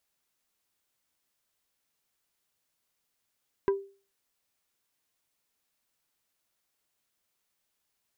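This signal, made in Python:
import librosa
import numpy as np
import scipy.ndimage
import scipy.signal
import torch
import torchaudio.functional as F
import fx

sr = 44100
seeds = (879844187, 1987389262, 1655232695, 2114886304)

y = fx.strike_wood(sr, length_s=0.45, level_db=-19, body='plate', hz=394.0, decay_s=0.37, tilt_db=8, modes=5)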